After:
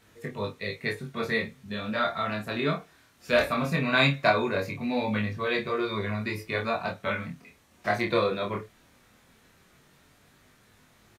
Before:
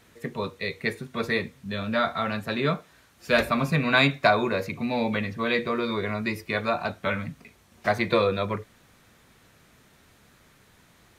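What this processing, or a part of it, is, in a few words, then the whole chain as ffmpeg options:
double-tracked vocal: -filter_complex "[0:a]asplit=2[link_01][link_02];[link_02]adelay=28,volume=-6.5dB[link_03];[link_01][link_03]amix=inputs=2:normalize=0,flanger=delay=19.5:depth=5.8:speed=0.18"

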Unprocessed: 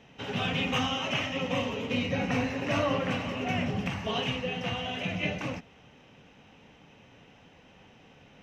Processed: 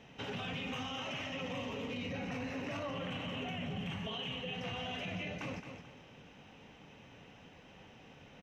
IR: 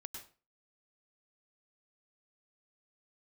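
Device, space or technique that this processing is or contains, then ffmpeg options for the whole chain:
stacked limiters: -filter_complex "[0:a]asettb=1/sr,asplit=3[link_01][link_02][link_03];[link_01]atrim=end=2.944[link_04];[link_02]atrim=start=2.94:end=4.54,asetpts=PTS-STARTPTS,afade=type=in:duration=0.004:curve=qsin,afade=type=out:start_time=1.596:duration=0.004:curve=qsin,equalizer=frequency=160:width_type=o:width=0.33:gain=7,equalizer=frequency=3150:width_type=o:width=0.33:gain=9,equalizer=frequency=5000:width_type=o:width=0.33:gain=-8[link_05];[link_03]atrim=start=4.536[link_06];[link_04][link_05]acrossfade=duration=0.004:curve1=hsin:curve2=qsin[link_07];[link_07][link_06]acrossfade=duration=0.004:curve1=qsin:curve2=hsin,aecho=1:1:218|436|654:0.237|0.0569|0.0137,alimiter=limit=-21.5dB:level=0:latency=1:release=491,alimiter=level_in=3dB:limit=-24dB:level=0:latency=1:release=11,volume=-3dB,alimiter=level_in=7dB:limit=-24dB:level=0:latency=1:release=266,volume=-7dB,volume=-1dB"

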